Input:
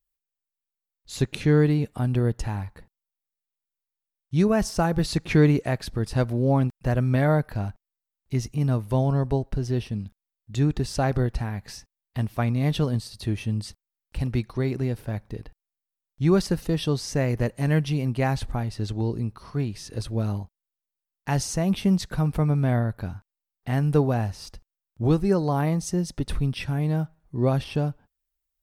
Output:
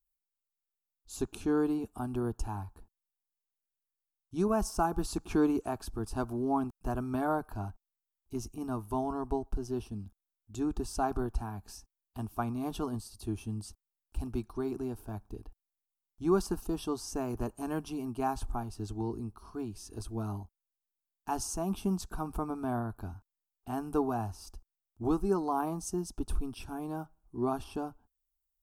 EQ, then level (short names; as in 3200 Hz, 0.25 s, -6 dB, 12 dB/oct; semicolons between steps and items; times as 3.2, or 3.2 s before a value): graphic EQ 250/1000/4000 Hz -4/-4/-10 dB; dynamic EQ 1100 Hz, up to +6 dB, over -45 dBFS, Q 1.3; fixed phaser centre 530 Hz, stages 6; -2.0 dB